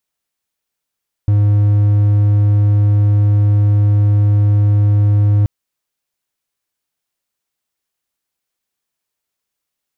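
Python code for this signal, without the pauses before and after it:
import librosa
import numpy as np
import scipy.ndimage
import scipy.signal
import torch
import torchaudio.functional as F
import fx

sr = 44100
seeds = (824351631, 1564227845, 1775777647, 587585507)

y = 10.0 ** (-6.5 / 20.0) * (1.0 - 4.0 * np.abs(np.mod(103.0 * (np.arange(round(4.18 * sr)) / sr) + 0.25, 1.0) - 0.5))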